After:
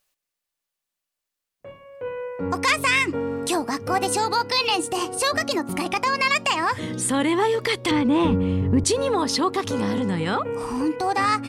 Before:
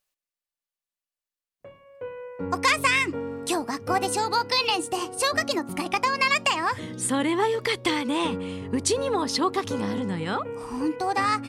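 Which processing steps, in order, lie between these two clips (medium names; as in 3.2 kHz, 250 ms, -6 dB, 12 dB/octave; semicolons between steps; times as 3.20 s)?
7.91–8.84 s: RIAA curve playback; in parallel at +2.5 dB: compression, threshold -30 dBFS, peak gain reduction 14.5 dB; on the sum: transient shaper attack -5 dB, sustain -1 dB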